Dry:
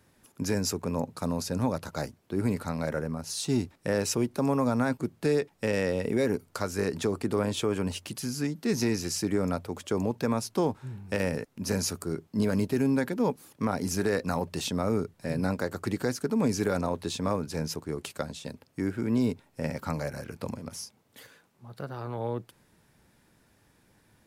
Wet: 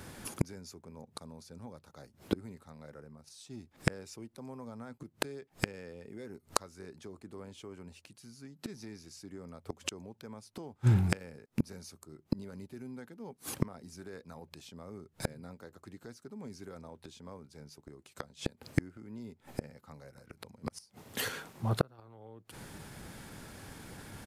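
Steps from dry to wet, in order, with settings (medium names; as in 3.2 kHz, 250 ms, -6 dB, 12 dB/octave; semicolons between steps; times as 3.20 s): inverted gate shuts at -29 dBFS, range -35 dB; pitch shift -1 st; trim +15.5 dB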